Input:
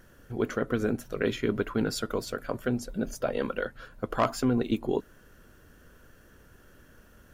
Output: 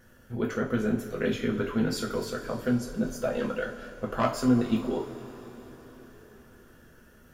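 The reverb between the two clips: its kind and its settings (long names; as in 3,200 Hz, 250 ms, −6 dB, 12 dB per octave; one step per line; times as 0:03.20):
coupled-rooms reverb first 0.3 s, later 4.8 s, from −20 dB, DRR −1.5 dB
level −4 dB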